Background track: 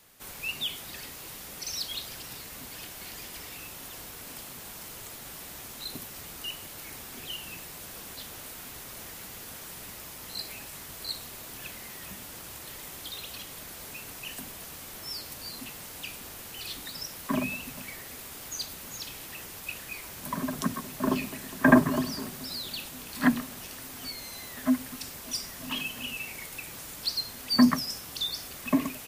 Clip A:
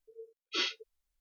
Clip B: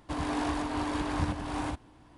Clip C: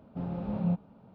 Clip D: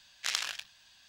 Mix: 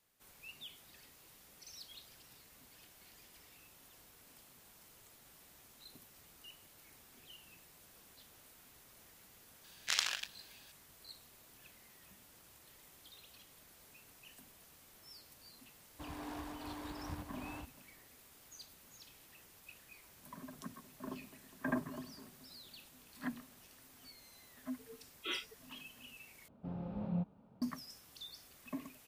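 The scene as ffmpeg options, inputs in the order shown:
-filter_complex "[0:a]volume=-18.5dB[a];[1:a]aresample=8000,aresample=44100[b];[a]asplit=2[c][d];[c]atrim=end=26.484[e];[3:a]atrim=end=1.14,asetpts=PTS-STARTPTS,volume=-8dB[f];[d]atrim=start=27.616[g];[4:a]atrim=end=1.08,asetpts=PTS-STARTPTS,volume=-1.5dB,afade=t=in:d=0.004:c=hsin,afade=t=out:st=1.076:d=0.004:c=hsin,adelay=9640[h];[2:a]atrim=end=2.17,asetpts=PTS-STARTPTS,volume=-14.5dB,afade=t=in:d=0.004:c=hsin,afade=t=out:st=2.166:d=0.004:c=hsin,adelay=15900[i];[b]atrim=end=1.2,asetpts=PTS-STARTPTS,volume=-6.5dB,afade=t=in:d=0.004:c=hsin,afade=t=out:st=1.196:d=0.004:c=hsin,adelay=24710[j];[e][f]acrossfade=d=0.004:c1=hsin:c2=hsin[k];[k][g]acrossfade=d=0.004:c1=hsin:c2=hsin[l];[l][h][i][j]amix=inputs=4:normalize=0"

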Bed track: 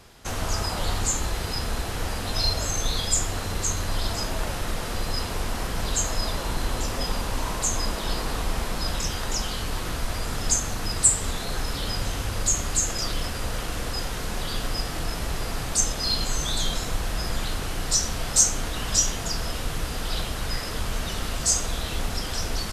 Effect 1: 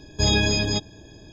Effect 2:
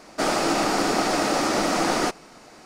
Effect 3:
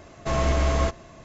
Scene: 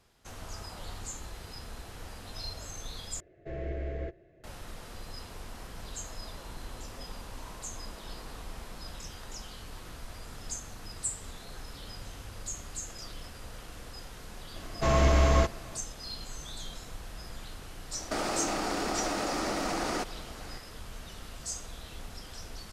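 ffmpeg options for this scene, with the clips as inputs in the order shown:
-filter_complex "[3:a]asplit=2[a][b];[0:a]volume=-15.5dB[c];[a]firequalizer=gain_entry='entry(150,0);entry(240,-10);entry(350,9);entry(690,-2);entry(1000,-24);entry(1700,0);entry(3000,-11);entry(6000,-24)':delay=0.05:min_phase=1[d];[2:a]acompressor=threshold=-28dB:ratio=6:attack=3.2:release=140:knee=1:detection=peak[e];[c]asplit=2[f][g];[f]atrim=end=3.204[h];[d]atrim=end=1.24,asetpts=PTS-STARTPTS,volume=-13.5dB[i];[g]atrim=start=4.436[j];[b]atrim=end=1.24,asetpts=PTS-STARTPTS,volume=-0.5dB,afade=t=in:d=0.004:c=hsin,afade=t=out:st=1.236:d=0.004:c=hsin,adelay=14560[k];[e]atrim=end=2.65,asetpts=PTS-STARTPTS,volume=-0.5dB,afade=t=in:d=0.004:c=hsin,afade=t=out:st=2.646:d=0.004:c=hsin,adelay=17930[l];[h][i]acrossfade=d=0.004:c1=hsin:c2=hsin[m];[m][j]acrossfade=d=0.004:c1=hsin:c2=hsin[n];[n][k][l]amix=inputs=3:normalize=0"

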